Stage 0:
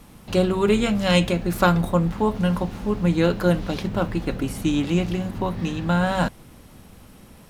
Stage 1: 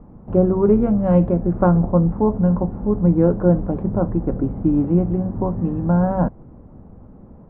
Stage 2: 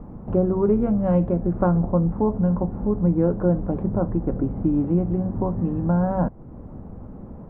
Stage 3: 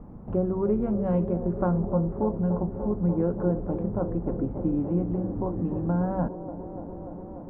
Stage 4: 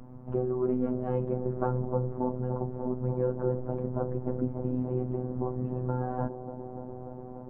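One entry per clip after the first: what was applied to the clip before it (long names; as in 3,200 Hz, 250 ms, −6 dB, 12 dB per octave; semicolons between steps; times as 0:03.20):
Bessel low-pass filter 680 Hz, order 4; level +5 dB
downward compressor 1.5 to 1, threshold −38 dBFS, peak gain reduction 10 dB; level +5 dB
delay with a band-pass on its return 293 ms, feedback 84%, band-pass 460 Hz, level −10 dB; level −5.5 dB
phases set to zero 126 Hz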